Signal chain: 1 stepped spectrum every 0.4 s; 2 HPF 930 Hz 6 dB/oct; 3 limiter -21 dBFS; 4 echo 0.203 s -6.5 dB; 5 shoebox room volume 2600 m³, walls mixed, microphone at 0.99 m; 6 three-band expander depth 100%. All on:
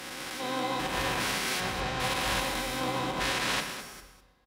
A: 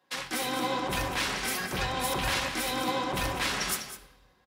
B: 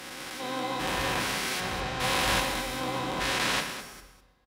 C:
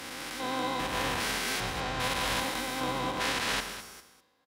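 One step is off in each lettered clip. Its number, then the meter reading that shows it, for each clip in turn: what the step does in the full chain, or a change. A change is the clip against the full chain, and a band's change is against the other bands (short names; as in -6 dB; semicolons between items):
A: 1, momentary loudness spread change -5 LU; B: 3, momentary loudness spread change +1 LU; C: 5, momentary loudness spread change -2 LU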